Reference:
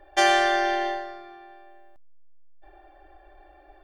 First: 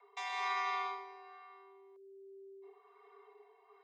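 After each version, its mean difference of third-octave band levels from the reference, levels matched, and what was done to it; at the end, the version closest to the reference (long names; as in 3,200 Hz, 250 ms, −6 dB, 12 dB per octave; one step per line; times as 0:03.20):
6.5 dB: low-pass filter 6,000 Hz 12 dB per octave
brickwall limiter −17.5 dBFS, peak gain reduction 9 dB
rotating-speaker cabinet horn 1.2 Hz
frequency shifter +390 Hz
level −8 dB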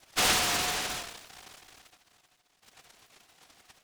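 12.0 dB: three sine waves on the formant tracks
Butterworth low-pass 1,800 Hz 72 dB per octave
feedback echo with a high-pass in the loop 388 ms, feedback 54%, high-pass 280 Hz, level −21 dB
short delay modulated by noise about 2,200 Hz, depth 0.36 ms
level −6 dB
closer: first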